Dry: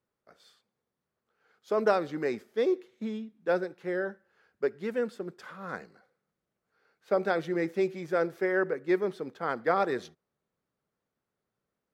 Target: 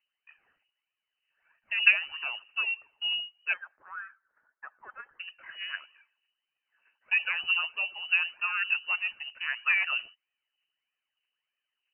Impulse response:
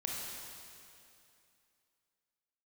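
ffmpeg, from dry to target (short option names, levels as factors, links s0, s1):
-filter_complex "[0:a]asettb=1/sr,asplit=3[s0][s1][s2];[s0]atrim=end=3.534[s3];[s1]atrim=start=3.53:end=5.19,asetpts=PTS-STARTPTS,afade=t=in:d=0.004:c=qsin,afade=t=out:st=1.656:d=0.004:c=qsin,highpass=f=1400:w=0.5412,highpass=f=1400:w=1.3066[s4];[s2]atrim=start=5.186[s5];[s3][s4]acrossfade=d=0.004:c1=hsin:c2=qsin[s6];[s6][s5]acrossfade=d=0.004:c1=qsin:c2=hsin,aphaser=in_gain=1:out_gain=1:delay=1.7:decay=0.59:speed=1.6:type=triangular,lowpass=f=2600:t=q:w=0.5098,lowpass=f=2600:t=q:w=0.6013,lowpass=f=2600:t=q:w=0.9,lowpass=f=2600:t=q:w=2.563,afreqshift=-3100,volume=0.794"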